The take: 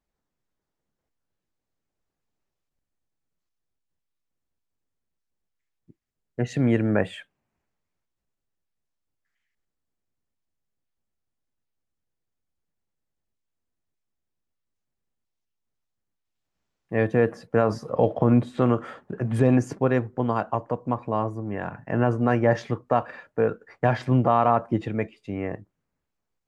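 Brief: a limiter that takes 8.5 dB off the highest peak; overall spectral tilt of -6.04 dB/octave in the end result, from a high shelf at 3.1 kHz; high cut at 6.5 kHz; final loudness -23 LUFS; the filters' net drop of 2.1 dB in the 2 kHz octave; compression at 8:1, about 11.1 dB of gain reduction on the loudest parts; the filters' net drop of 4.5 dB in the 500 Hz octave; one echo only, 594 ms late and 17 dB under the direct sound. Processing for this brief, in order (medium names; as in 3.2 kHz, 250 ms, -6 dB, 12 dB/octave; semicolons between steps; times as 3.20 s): low-pass 6.5 kHz; peaking EQ 500 Hz -5.5 dB; peaking EQ 2 kHz -3.5 dB; treble shelf 3.1 kHz +4 dB; compression 8:1, threshold -27 dBFS; peak limiter -22 dBFS; delay 594 ms -17 dB; trim +12.5 dB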